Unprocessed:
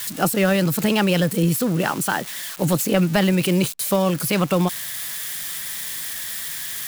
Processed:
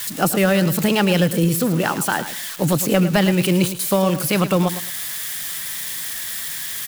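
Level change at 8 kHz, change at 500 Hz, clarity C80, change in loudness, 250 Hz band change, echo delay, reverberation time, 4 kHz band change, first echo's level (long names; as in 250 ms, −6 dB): +2.0 dB, +2.0 dB, no reverb audible, +1.5 dB, +1.5 dB, 109 ms, no reverb audible, +2.0 dB, −12.0 dB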